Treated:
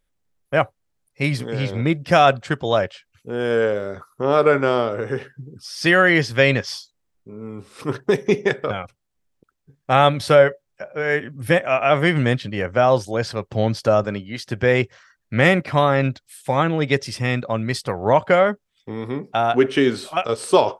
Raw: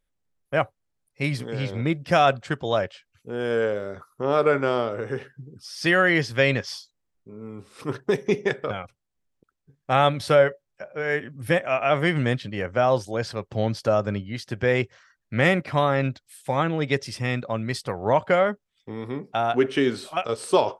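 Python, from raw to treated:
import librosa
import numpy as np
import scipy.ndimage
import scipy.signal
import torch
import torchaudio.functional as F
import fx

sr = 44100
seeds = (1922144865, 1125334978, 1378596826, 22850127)

y = fx.highpass(x, sr, hz=230.0, slope=6, at=(14.04, 14.45))
y = F.gain(torch.from_numpy(y), 4.5).numpy()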